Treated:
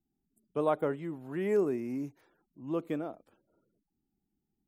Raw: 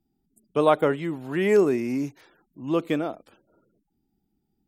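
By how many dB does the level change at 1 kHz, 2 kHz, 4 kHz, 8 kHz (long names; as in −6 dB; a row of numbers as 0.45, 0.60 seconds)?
−10.5 dB, −13.5 dB, below −15 dB, can't be measured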